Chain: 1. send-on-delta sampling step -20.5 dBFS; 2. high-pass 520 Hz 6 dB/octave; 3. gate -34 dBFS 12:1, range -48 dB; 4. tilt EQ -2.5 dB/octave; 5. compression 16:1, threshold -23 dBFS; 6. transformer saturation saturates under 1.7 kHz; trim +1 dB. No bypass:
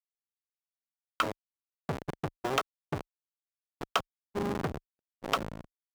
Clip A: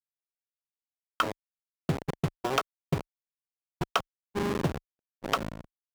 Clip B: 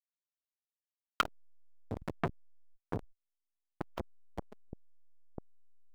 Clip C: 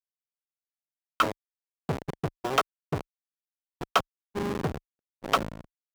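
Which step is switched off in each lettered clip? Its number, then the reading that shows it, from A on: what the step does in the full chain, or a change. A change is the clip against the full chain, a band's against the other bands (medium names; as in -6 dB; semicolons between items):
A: 6, crest factor change -3.0 dB; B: 2, 8 kHz band -3.5 dB; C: 5, mean gain reduction 2.0 dB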